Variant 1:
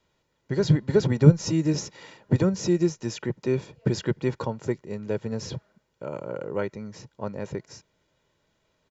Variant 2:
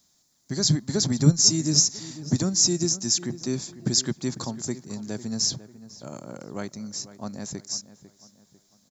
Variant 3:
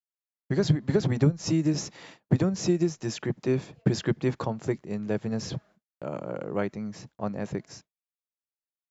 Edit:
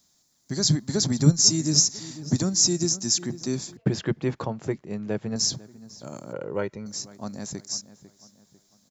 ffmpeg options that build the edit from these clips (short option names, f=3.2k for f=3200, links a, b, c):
-filter_complex "[1:a]asplit=3[a][b][c];[a]atrim=end=3.772[d];[2:a]atrim=start=3.768:end=5.362[e];[b]atrim=start=5.358:end=6.332[f];[0:a]atrim=start=6.328:end=6.862[g];[c]atrim=start=6.858[h];[d][e]acrossfade=d=0.004:c1=hsin:c2=hsin[i];[i][f]acrossfade=d=0.004:c1=hsin:c2=hsin[j];[j][g]acrossfade=d=0.004:c1=hsin:c2=hsin[k];[k][h]acrossfade=d=0.004:c1=hsin:c2=hsin"